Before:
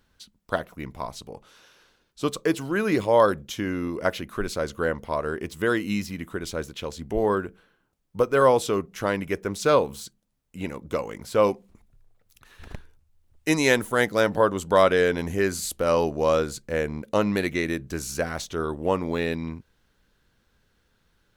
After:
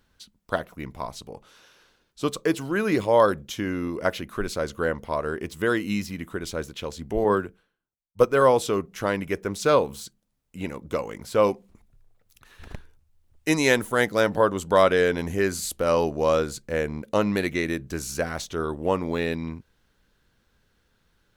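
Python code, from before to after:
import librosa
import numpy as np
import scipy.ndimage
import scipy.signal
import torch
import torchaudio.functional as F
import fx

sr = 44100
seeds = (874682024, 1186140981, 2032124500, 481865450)

y = fx.band_widen(x, sr, depth_pct=100, at=(7.24, 8.25))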